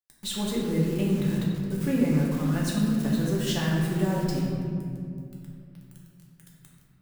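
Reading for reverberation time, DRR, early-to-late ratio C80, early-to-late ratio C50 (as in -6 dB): 2.3 s, -4.5 dB, 1.5 dB, 0.0 dB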